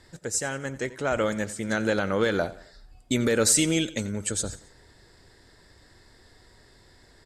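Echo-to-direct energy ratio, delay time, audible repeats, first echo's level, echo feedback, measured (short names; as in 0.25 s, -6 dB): -16.5 dB, 89 ms, 3, -17.5 dB, 41%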